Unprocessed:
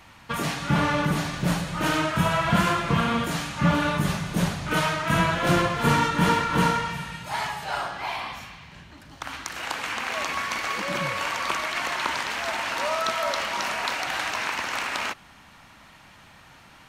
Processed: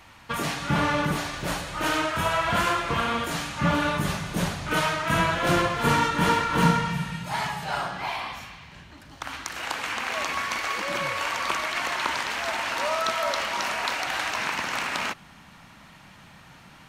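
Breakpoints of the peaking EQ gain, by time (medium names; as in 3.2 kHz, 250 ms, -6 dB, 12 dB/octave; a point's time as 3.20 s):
peaking EQ 170 Hz 0.94 oct
-3.5 dB
from 1.16 s -12 dB
from 3.31 s -4 dB
from 6.63 s +8 dB
from 8.09 s -1.5 dB
from 10.57 s -8 dB
from 11.31 s -1.5 dB
from 14.38 s +6.5 dB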